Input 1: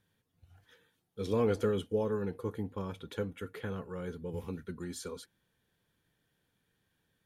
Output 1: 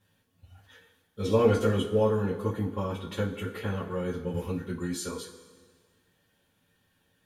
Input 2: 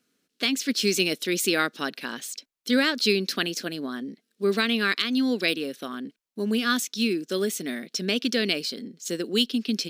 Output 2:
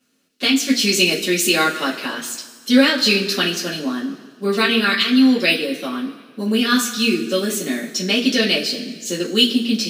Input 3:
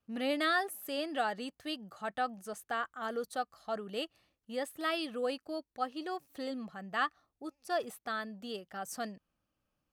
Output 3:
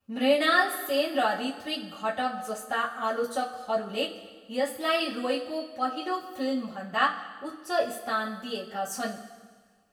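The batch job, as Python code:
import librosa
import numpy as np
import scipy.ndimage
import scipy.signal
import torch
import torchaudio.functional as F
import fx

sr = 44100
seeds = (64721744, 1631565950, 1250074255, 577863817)

y = fx.rev_double_slope(x, sr, seeds[0], early_s=0.2, late_s=1.6, knee_db=-18, drr_db=-7.5)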